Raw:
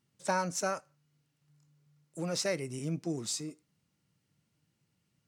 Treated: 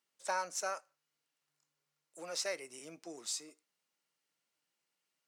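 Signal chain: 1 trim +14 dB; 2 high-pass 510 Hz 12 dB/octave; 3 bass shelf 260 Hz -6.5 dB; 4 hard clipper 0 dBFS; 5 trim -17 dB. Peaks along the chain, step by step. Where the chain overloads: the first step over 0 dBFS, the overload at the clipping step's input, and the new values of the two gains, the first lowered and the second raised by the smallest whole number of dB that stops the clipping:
-2.5 dBFS, -5.5 dBFS, -5.0 dBFS, -5.0 dBFS, -22.0 dBFS; nothing clips

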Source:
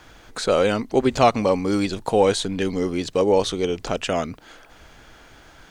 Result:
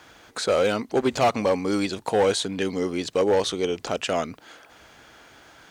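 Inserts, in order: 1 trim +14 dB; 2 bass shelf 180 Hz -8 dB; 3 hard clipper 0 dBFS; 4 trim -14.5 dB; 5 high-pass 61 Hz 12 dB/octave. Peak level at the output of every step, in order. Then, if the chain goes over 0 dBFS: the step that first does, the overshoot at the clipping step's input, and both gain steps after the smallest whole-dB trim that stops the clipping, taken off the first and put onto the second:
+10.0 dBFS, +10.0 dBFS, 0.0 dBFS, -14.5 dBFS, -12.0 dBFS; step 1, 10.0 dB; step 1 +4 dB, step 4 -4.5 dB

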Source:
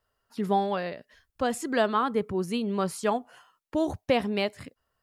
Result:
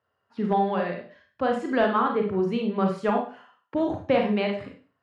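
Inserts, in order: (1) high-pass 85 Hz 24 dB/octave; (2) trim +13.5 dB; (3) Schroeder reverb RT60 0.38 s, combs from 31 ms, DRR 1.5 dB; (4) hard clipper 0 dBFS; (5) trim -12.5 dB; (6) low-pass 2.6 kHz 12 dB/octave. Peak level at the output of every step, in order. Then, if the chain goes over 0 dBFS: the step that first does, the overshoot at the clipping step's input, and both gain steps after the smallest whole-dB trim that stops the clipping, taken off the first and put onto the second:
-11.5 dBFS, +2.0 dBFS, +4.5 dBFS, 0.0 dBFS, -12.5 dBFS, -12.0 dBFS; step 2, 4.5 dB; step 2 +8.5 dB, step 5 -7.5 dB

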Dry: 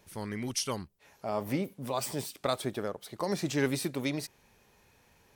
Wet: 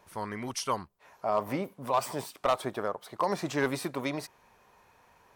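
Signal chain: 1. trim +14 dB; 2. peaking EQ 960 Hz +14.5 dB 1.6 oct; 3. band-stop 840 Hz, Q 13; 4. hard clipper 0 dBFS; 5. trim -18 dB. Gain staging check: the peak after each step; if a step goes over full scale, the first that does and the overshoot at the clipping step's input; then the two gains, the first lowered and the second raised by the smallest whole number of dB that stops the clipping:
-1.5 dBFS, +7.5 dBFS, +7.0 dBFS, 0.0 dBFS, -18.0 dBFS; step 2, 7.0 dB; step 1 +7 dB, step 5 -11 dB

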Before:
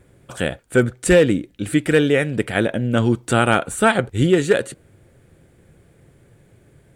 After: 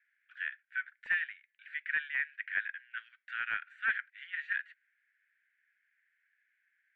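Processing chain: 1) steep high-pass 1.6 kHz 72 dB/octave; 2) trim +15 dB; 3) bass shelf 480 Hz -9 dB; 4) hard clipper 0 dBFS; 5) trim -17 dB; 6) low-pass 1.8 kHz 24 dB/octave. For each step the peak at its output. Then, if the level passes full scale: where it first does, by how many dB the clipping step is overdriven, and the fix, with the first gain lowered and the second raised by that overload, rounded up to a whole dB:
-10.0 dBFS, +5.0 dBFS, +4.5 dBFS, 0.0 dBFS, -17.0 dBFS, -19.0 dBFS; step 2, 4.5 dB; step 2 +10 dB, step 5 -12 dB

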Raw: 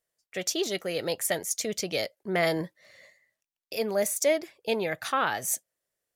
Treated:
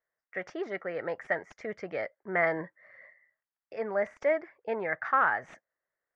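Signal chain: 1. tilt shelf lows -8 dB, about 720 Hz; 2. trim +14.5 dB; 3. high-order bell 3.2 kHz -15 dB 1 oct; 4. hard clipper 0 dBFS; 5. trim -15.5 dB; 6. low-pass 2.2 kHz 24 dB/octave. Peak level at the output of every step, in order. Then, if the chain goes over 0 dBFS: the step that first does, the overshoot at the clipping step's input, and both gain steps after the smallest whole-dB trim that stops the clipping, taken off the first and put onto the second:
-7.0 dBFS, +7.5 dBFS, +7.5 dBFS, 0.0 dBFS, -15.5 dBFS, -14.5 dBFS; step 2, 7.5 dB; step 2 +6.5 dB, step 5 -7.5 dB

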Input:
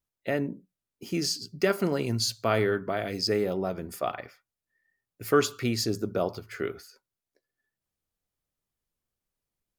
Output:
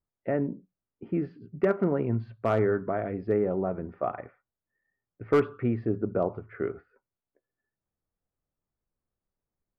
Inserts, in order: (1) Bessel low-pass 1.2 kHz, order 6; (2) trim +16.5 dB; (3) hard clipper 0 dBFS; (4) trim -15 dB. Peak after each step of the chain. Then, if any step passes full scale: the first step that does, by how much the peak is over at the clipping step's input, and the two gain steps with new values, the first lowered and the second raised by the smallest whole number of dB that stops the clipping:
-11.0 dBFS, +5.5 dBFS, 0.0 dBFS, -15.0 dBFS; step 2, 5.5 dB; step 2 +10.5 dB, step 4 -9 dB

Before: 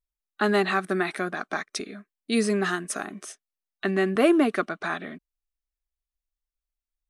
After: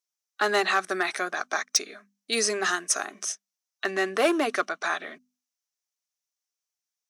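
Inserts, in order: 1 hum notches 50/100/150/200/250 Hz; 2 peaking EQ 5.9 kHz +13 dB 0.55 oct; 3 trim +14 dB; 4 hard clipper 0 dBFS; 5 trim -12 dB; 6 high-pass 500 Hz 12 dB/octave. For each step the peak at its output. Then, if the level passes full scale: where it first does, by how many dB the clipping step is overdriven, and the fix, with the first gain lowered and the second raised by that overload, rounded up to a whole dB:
-7.5 dBFS, -7.0 dBFS, +7.0 dBFS, 0.0 dBFS, -12.0 dBFS, -9.0 dBFS; step 3, 7.0 dB; step 3 +7 dB, step 5 -5 dB

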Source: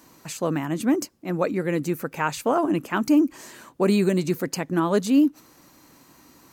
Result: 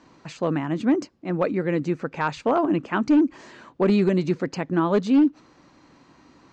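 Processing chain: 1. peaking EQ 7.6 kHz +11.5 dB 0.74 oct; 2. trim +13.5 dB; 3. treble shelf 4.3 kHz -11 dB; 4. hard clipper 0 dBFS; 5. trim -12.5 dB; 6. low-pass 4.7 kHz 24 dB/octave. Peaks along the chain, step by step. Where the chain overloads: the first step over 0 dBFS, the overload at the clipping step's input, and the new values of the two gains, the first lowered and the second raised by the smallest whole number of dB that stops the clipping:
-8.5 dBFS, +5.0 dBFS, +3.5 dBFS, 0.0 dBFS, -12.5 dBFS, -12.0 dBFS; step 2, 3.5 dB; step 2 +9.5 dB, step 5 -8.5 dB

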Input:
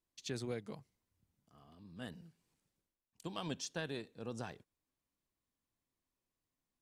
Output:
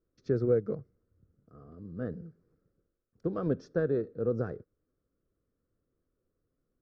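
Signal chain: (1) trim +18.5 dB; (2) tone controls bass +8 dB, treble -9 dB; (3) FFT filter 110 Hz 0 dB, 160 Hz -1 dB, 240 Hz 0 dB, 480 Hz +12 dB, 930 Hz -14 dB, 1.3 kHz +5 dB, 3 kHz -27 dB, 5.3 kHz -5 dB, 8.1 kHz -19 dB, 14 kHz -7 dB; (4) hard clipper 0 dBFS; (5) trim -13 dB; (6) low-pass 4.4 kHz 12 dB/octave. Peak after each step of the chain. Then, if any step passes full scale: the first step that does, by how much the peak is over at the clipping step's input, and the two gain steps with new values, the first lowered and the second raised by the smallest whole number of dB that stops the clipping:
-7.5 dBFS, -7.0 dBFS, -2.5 dBFS, -2.5 dBFS, -15.5 dBFS, -15.5 dBFS; nothing clips

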